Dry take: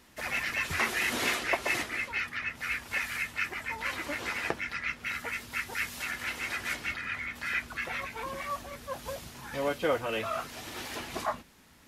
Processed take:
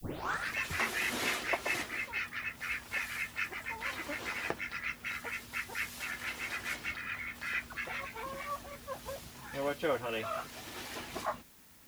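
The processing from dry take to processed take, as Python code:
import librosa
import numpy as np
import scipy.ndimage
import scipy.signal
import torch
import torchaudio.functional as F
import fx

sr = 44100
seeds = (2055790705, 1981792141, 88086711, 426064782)

y = fx.tape_start_head(x, sr, length_s=0.53)
y = fx.dmg_noise_colour(y, sr, seeds[0], colour='blue', level_db=-57.0)
y = y * 10.0 ** (-4.0 / 20.0)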